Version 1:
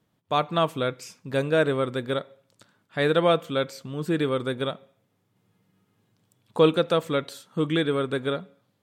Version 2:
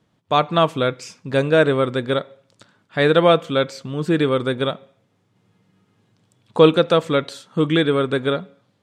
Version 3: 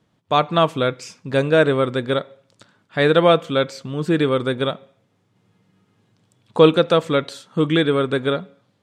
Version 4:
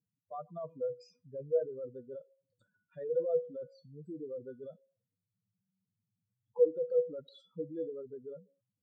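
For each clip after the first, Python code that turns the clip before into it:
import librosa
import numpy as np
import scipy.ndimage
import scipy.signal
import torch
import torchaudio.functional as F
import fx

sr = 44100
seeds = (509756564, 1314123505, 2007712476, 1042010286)

y1 = scipy.signal.sosfilt(scipy.signal.butter(2, 7700.0, 'lowpass', fs=sr, output='sos'), x)
y1 = F.gain(torch.from_numpy(y1), 6.5).numpy()
y2 = y1
y3 = fx.spec_expand(y2, sr, power=3.8)
y3 = fx.comb_fb(y3, sr, f0_hz=490.0, decay_s=0.21, harmonics='all', damping=0.0, mix_pct=90)
y3 = F.gain(torch.from_numpy(y3), -7.0).numpy()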